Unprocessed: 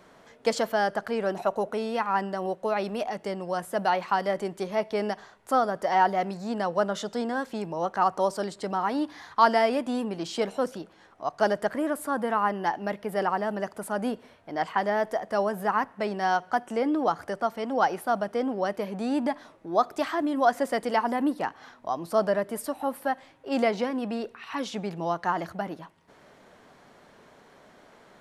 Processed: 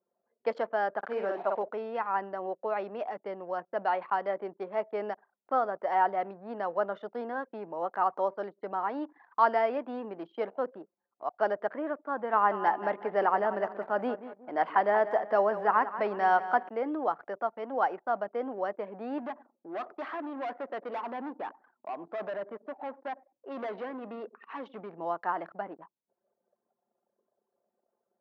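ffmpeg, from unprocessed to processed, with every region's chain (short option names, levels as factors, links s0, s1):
-filter_complex "[0:a]asettb=1/sr,asplit=3[s0][s1][s2];[s0]atrim=end=0.984[s3];[s1]atrim=start=0.98:end=1.63,asetpts=PTS-STARTPTS,afade=t=in:d=0.004:c=qsin,afade=t=out:st=0.646:d=0.004:c=qsin,acrusher=bits=6:mix=0:aa=0.5,asplit=2[s4][s5];[s5]adelay=50,volume=0.668[s6];[s4][s6]amix=inputs=2:normalize=0,atrim=end_sample=28665[s7];[s2]atrim=start=1.626[s8];[s3][s7]acrossfade=d=0.004:c1=hsin:c2=qsin[s9];[s9][s8]acrossfade=d=0.004:c1=qsin:c2=hsin,asettb=1/sr,asplit=3[s10][s11][s12];[s10]atrim=end=12.334[s13];[s11]atrim=start=12.33:end=16.69,asetpts=PTS-STARTPTS,afade=t=in:d=0.004:c=qsin,afade=t=out:st=4.356:d=0.004:c=qsin,acontrast=22,aecho=1:1:182|364|546|728:0.237|0.0925|0.0361|0.0141,atrim=end_sample=192276[s14];[s12]atrim=start=16.686[s15];[s13][s14]acrossfade=d=0.004:c1=hsin:c2=qsin[s16];[s16][s15]acrossfade=d=0.004:c1=qsin:c2=hsin,asettb=1/sr,asplit=3[s17][s18][s19];[s17]atrim=end=19.184[s20];[s18]atrim=start=19.18:end=24.94,asetpts=PTS-STARTPTS,afade=t=in:d=0.004:c=qsin,afade=t=out:st=5.756:d=0.004:c=qsin,volume=25.1,asoftclip=hard,volume=0.0398,asplit=2[s21][s22];[s22]adelay=97,lowpass=f=930:p=1,volume=0.158,asplit=2[s23][s24];[s24]adelay=97,lowpass=f=930:p=1,volume=0.53,asplit=2[s25][s26];[s26]adelay=97,lowpass=f=930:p=1,volume=0.53,asplit=2[s27][s28];[s28]adelay=97,lowpass=f=930:p=1,volume=0.53,asplit=2[s29][s30];[s30]adelay=97,lowpass=f=930:p=1,volume=0.53[s31];[s21][s23][s25][s27][s29][s31]amix=inputs=6:normalize=0,atrim=end_sample=254016[s32];[s19]atrim=start=24.936[s33];[s20][s32]acrossfade=d=0.004:c1=hsin:c2=qsin[s34];[s34][s33]acrossfade=d=0.004:c1=qsin:c2=hsin,lowpass=1900,anlmdn=0.158,highpass=350,volume=0.668"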